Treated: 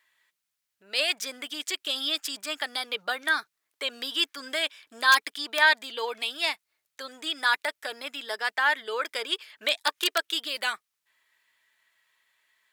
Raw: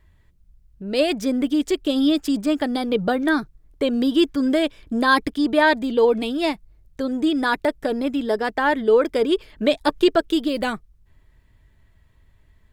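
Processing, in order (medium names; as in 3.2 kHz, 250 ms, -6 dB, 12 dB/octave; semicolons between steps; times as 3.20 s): in parallel at -8.5 dB: integer overflow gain 6.5 dB; on the sum: high-pass 1.5 kHz 12 dB/octave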